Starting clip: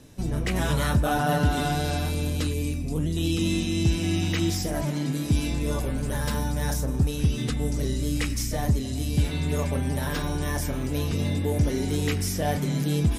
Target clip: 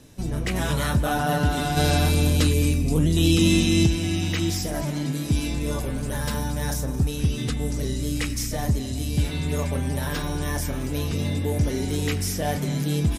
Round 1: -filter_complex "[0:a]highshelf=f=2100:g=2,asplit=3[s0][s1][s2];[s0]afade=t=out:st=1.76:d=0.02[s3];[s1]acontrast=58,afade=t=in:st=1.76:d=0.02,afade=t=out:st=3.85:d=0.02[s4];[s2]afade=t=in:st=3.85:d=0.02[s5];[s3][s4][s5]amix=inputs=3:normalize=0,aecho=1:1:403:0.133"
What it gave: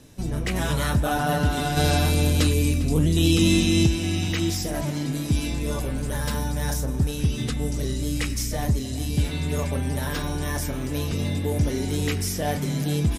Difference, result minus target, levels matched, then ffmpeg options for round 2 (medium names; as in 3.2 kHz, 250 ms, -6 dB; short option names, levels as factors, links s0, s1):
echo 185 ms late
-filter_complex "[0:a]highshelf=f=2100:g=2,asplit=3[s0][s1][s2];[s0]afade=t=out:st=1.76:d=0.02[s3];[s1]acontrast=58,afade=t=in:st=1.76:d=0.02,afade=t=out:st=3.85:d=0.02[s4];[s2]afade=t=in:st=3.85:d=0.02[s5];[s3][s4][s5]amix=inputs=3:normalize=0,aecho=1:1:218:0.133"